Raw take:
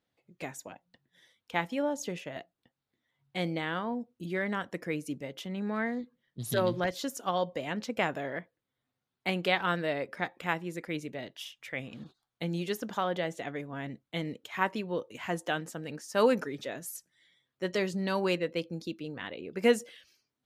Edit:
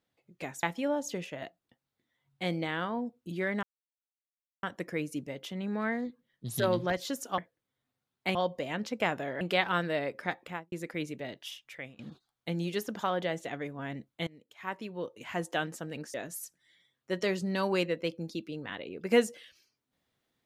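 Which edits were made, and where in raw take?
0.63–1.57 cut
4.57 insert silence 1.00 s
8.38–9.35 move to 7.32
10.34–10.66 studio fade out
11.53–11.93 fade out, to -16.5 dB
14.21–15.43 fade in, from -23 dB
16.08–16.66 cut

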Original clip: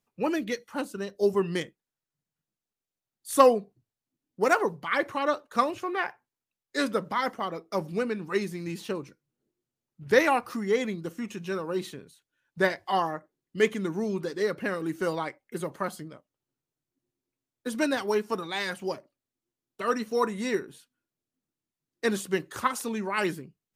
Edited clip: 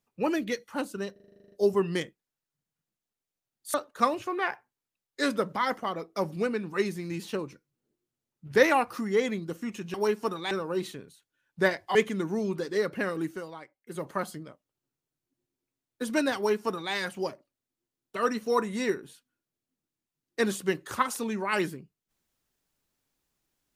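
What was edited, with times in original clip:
1.12 stutter 0.04 s, 11 plays
3.34–5.3 cut
12.94–13.6 cut
14.88–15.7 dip -12 dB, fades 0.19 s
18.01–18.58 copy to 11.5

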